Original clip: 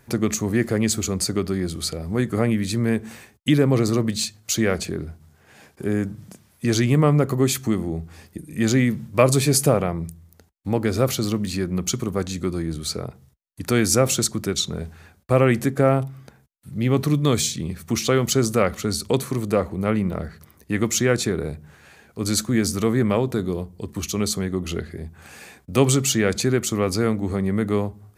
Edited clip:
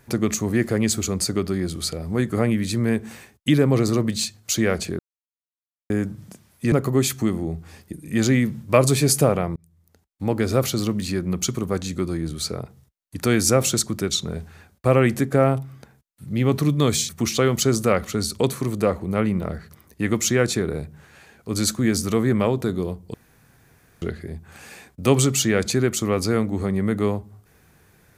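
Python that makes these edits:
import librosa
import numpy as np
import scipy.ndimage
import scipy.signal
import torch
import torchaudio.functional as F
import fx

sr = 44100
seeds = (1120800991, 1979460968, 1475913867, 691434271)

y = fx.edit(x, sr, fx.silence(start_s=4.99, length_s=0.91),
    fx.cut(start_s=6.72, length_s=0.45),
    fx.fade_in_span(start_s=10.01, length_s=0.79),
    fx.cut(start_s=17.54, length_s=0.25),
    fx.room_tone_fill(start_s=23.84, length_s=0.88), tone=tone)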